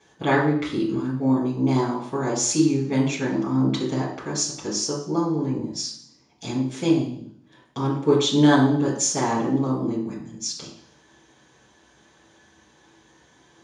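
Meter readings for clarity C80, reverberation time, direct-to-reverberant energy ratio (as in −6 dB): 8.0 dB, 0.55 s, −7.5 dB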